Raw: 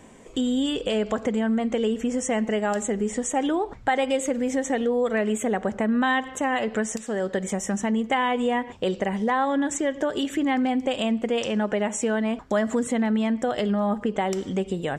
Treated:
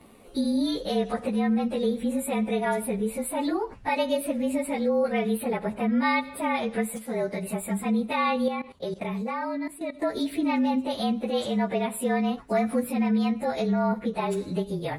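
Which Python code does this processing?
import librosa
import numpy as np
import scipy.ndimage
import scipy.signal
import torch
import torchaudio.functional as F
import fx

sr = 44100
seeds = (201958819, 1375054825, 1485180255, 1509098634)

y = fx.partial_stretch(x, sr, pct=109)
y = fx.level_steps(y, sr, step_db=15, at=(8.48, 10.02))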